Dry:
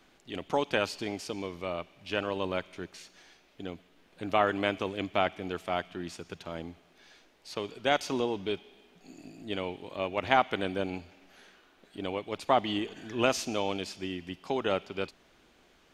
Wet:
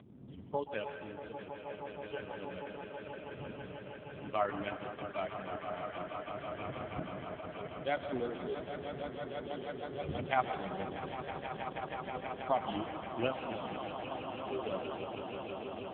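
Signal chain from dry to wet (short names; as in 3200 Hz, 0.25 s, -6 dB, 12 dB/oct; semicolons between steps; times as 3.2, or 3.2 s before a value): per-bin expansion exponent 2; wind noise 180 Hz -46 dBFS; 0.87–2.26 gate -52 dBFS, range -11 dB; upward compressor, threshold -45 dBFS; swelling echo 0.16 s, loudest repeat 8, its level -10.5 dB; on a send at -7 dB: reverb RT60 1.8 s, pre-delay 0.118 s; on the sum: gain -3 dB; AMR-NB 4.75 kbps 8000 Hz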